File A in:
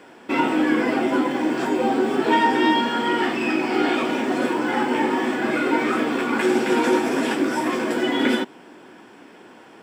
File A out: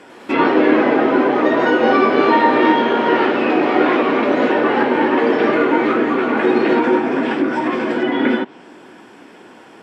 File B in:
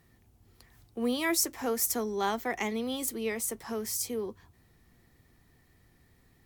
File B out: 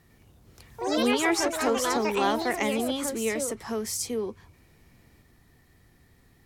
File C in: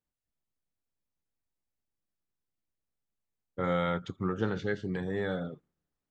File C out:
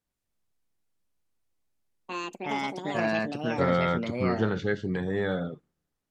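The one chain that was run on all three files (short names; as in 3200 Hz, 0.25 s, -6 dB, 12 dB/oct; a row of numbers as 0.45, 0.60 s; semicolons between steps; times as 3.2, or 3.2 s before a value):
echoes that change speed 0.1 s, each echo +4 st, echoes 3; treble ducked by the level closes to 2200 Hz, closed at -17.5 dBFS; gain +4 dB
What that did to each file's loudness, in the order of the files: +5.5, +4.0, +4.0 LU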